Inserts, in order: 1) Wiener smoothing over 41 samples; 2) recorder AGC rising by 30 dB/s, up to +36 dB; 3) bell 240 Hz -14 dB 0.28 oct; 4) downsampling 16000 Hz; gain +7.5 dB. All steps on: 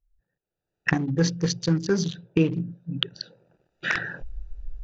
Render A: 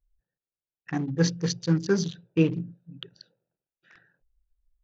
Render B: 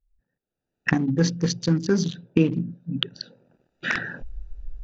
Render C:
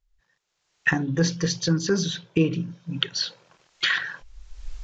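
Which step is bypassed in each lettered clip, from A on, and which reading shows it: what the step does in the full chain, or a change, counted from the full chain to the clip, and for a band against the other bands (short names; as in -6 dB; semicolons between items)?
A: 2, crest factor change -3.0 dB; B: 3, 250 Hz band +2.5 dB; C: 1, 4 kHz band +4.5 dB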